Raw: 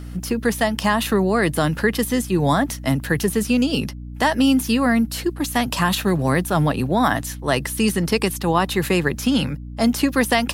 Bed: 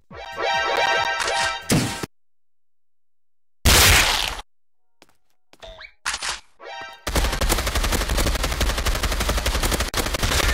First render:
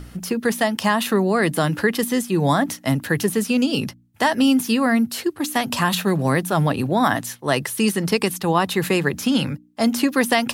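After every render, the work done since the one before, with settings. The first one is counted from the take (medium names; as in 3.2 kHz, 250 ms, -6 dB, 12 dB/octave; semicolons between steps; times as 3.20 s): de-hum 60 Hz, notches 5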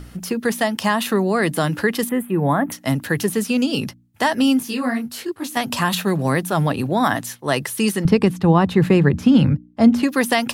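2.09–2.72 s: Butterworth band-stop 5.4 kHz, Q 0.58; 4.59–5.57 s: detune thickener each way 48 cents; 8.05–10.03 s: RIAA curve playback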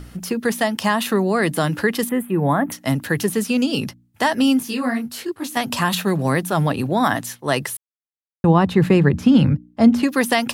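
7.77–8.44 s: mute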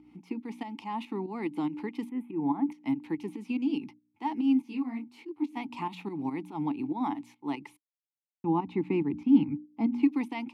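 volume shaper 143 bpm, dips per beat 2, -11 dB, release 181 ms; vowel filter u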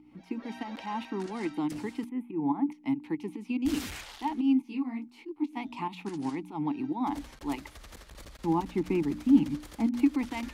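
add bed -27 dB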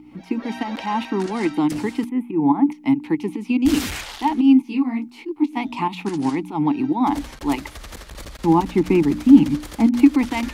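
trim +11.5 dB; peak limiter -1 dBFS, peak gain reduction 1.5 dB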